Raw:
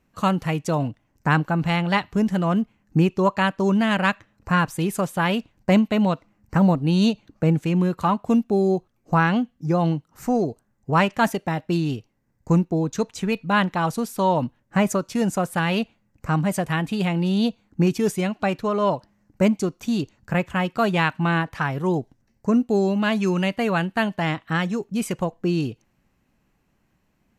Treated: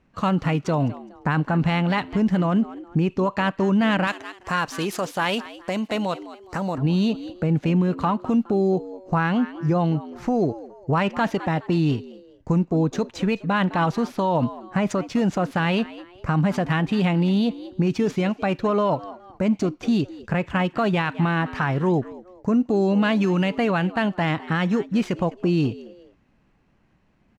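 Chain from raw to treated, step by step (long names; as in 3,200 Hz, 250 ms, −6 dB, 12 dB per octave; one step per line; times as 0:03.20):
running median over 5 samples
high-frequency loss of the air 55 metres
echo with shifted repeats 208 ms, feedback 33%, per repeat +89 Hz, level −21 dB
brickwall limiter −17.5 dBFS, peak gain reduction 11.5 dB
0:04.07–0:06.78: bass and treble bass −11 dB, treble +12 dB
level +4.5 dB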